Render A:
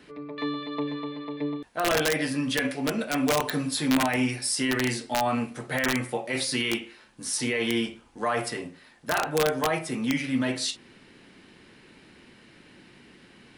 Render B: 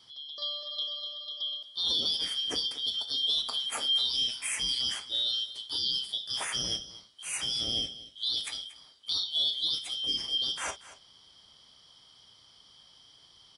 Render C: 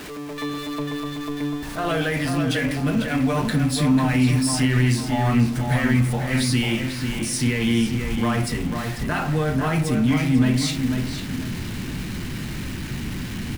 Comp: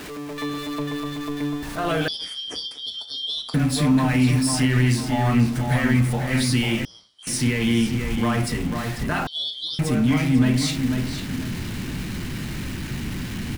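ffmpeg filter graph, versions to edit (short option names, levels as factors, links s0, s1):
-filter_complex "[1:a]asplit=3[s0][s1][s2];[2:a]asplit=4[s3][s4][s5][s6];[s3]atrim=end=2.082[s7];[s0]atrim=start=2.078:end=3.542[s8];[s4]atrim=start=3.538:end=6.852[s9];[s1]atrim=start=6.848:end=7.272[s10];[s5]atrim=start=7.268:end=9.272[s11];[s2]atrim=start=9.268:end=9.792[s12];[s6]atrim=start=9.788[s13];[s7][s8]acrossfade=d=0.004:c1=hsin:c2=hsin[s14];[s14][s9]acrossfade=d=0.004:c1=hsin:c2=hsin[s15];[s15][s10]acrossfade=d=0.004:c1=hsin:c2=hsin[s16];[s16][s11]acrossfade=d=0.004:c1=hsin:c2=hsin[s17];[s17][s12]acrossfade=d=0.004:c1=hsin:c2=hsin[s18];[s18][s13]acrossfade=d=0.004:c1=hsin:c2=hsin"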